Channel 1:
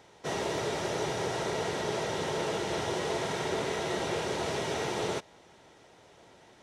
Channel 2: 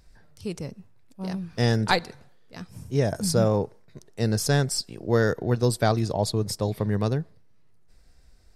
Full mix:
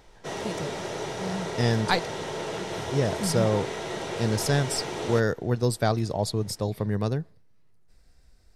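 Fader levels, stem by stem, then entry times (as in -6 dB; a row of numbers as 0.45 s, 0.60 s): -1.0 dB, -2.0 dB; 0.00 s, 0.00 s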